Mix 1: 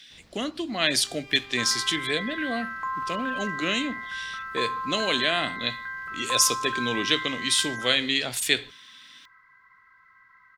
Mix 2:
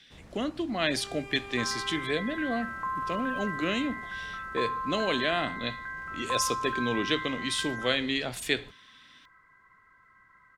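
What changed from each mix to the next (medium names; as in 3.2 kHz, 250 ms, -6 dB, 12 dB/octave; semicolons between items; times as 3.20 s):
first sound: remove four-pole ladder low-pass 5.7 kHz, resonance 35%; master: add treble shelf 2.5 kHz -11.5 dB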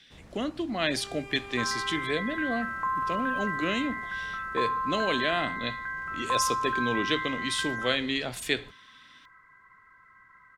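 second sound +3.5 dB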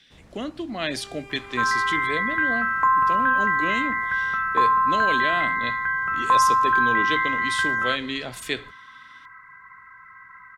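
second sound +10.5 dB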